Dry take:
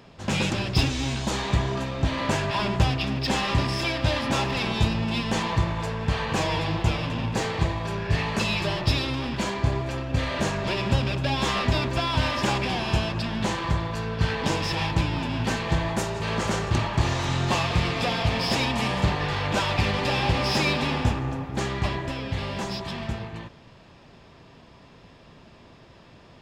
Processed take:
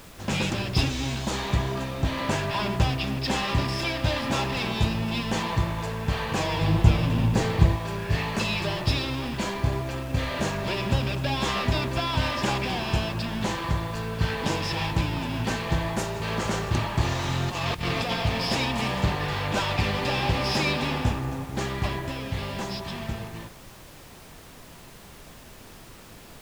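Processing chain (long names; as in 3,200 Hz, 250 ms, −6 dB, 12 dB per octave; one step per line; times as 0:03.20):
0:06.61–0:07.76: low-shelf EQ 310 Hz +9 dB
0:17.49–0:18.14: compressor whose output falls as the input rises −26 dBFS, ratio −0.5
background noise pink −46 dBFS
level −1.5 dB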